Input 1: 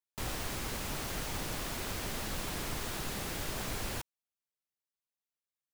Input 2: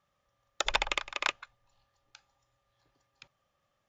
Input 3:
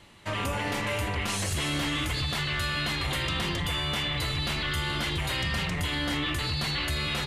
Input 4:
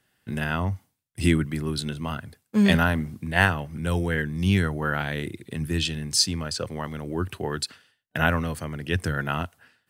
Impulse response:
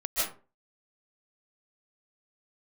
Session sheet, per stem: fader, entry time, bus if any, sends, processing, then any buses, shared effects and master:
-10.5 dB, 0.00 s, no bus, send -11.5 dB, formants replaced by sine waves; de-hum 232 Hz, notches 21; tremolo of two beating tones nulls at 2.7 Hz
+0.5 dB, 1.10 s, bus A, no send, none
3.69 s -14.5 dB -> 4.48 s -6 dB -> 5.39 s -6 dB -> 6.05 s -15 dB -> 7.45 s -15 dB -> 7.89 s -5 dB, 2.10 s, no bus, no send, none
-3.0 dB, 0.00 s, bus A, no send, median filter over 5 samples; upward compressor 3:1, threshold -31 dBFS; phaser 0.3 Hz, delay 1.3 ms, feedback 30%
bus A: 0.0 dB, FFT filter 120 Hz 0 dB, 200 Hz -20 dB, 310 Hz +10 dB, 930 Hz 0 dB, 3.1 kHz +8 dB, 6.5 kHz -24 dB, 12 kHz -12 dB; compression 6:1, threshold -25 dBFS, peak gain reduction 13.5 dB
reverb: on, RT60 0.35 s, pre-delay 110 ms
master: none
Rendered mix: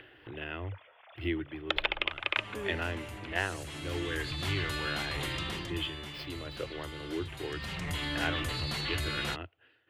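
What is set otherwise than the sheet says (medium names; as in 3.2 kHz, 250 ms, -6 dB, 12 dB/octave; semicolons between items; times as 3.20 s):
stem 1 -10.5 dB -> -20.0 dB; stem 4 -3.0 dB -> -14.5 dB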